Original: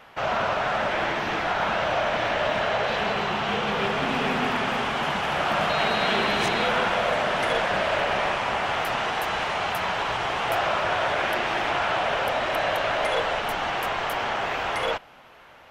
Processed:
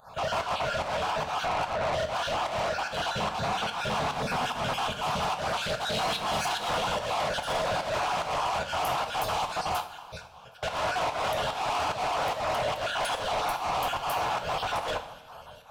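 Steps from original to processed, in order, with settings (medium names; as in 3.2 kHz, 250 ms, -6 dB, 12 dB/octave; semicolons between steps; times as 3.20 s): random holes in the spectrogram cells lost 33%; 1.45–1.94 s: low-pass 2.1 kHz; 9.80–10.63 s: compressor with a negative ratio -44 dBFS, ratio -0.5; static phaser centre 820 Hz, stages 4; saturation -35 dBFS, distortion -6 dB; volume shaper 146 bpm, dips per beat 1, -19 dB, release 151 ms; two-slope reverb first 0.45 s, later 2.3 s, from -16 dB, DRR 5.5 dB; 5.32–5.96 s: loudspeaker Doppler distortion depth 0.36 ms; trim +8 dB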